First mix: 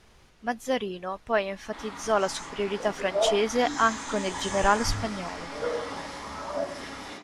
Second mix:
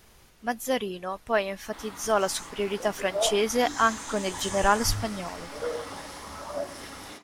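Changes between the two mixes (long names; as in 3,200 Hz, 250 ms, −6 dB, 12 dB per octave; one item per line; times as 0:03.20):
background: send −8.5 dB
master: remove high-frequency loss of the air 61 metres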